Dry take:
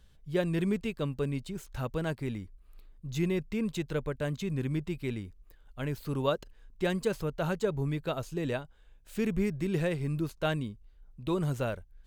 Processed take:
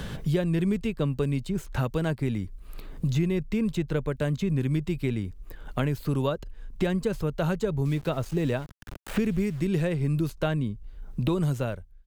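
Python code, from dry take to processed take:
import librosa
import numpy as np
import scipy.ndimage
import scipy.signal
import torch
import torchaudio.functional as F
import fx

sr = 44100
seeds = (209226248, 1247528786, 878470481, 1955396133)

y = fx.fade_out_tail(x, sr, length_s=0.62)
y = fx.low_shelf(y, sr, hz=260.0, db=6.0)
y = fx.sample_gate(y, sr, floor_db=-45.5, at=(7.85, 9.6))
y = fx.band_squash(y, sr, depth_pct=100)
y = F.gain(torch.from_numpy(y), 1.5).numpy()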